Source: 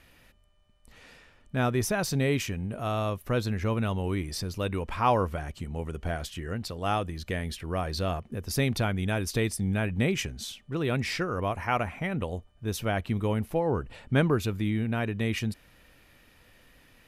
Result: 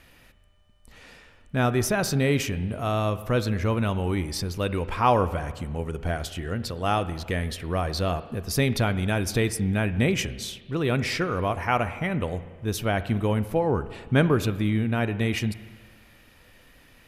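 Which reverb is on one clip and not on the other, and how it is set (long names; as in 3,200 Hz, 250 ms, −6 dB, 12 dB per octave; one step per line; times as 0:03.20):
spring reverb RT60 1.5 s, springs 34/56 ms, chirp 80 ms, DRR 13 dB
level +3.5 dB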